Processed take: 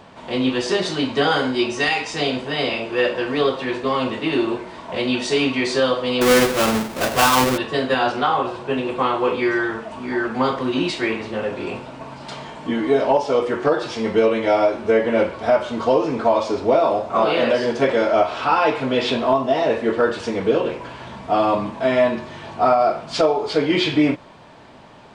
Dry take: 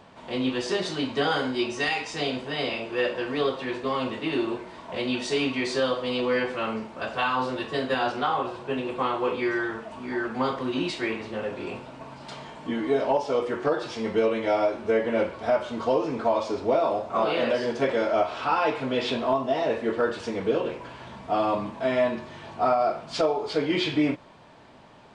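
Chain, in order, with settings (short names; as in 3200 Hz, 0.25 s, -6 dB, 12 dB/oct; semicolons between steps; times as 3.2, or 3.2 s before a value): 6.21–7.58 half-waves squared off; gain +6.5 dB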